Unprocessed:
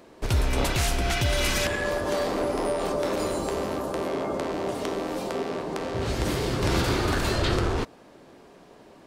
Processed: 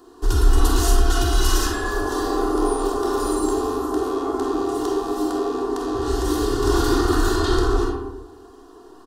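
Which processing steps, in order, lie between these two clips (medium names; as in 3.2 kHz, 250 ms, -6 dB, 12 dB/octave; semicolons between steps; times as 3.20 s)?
static phaser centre 610 Hz, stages 6; comb 2.8 ms, depth 69%; speakerphone echo 110 ms, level -10 dB; algorithmic reverb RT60 1 s, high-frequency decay 0.4×, pre-delay 5 ms, DRR -0.5 dB; trim +2 dB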